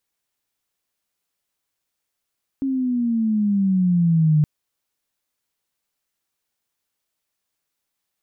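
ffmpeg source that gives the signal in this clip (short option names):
-f lavfi -i "aevalsrc='pow(10,(-12.5+7*(t/1.82-1))/20)*sin(2*PI*273*1.82/(-10.5*log(2)/12)*(exp(-10.5*log(2)/12*t/1.82)-1))':d=1.82:s=44100"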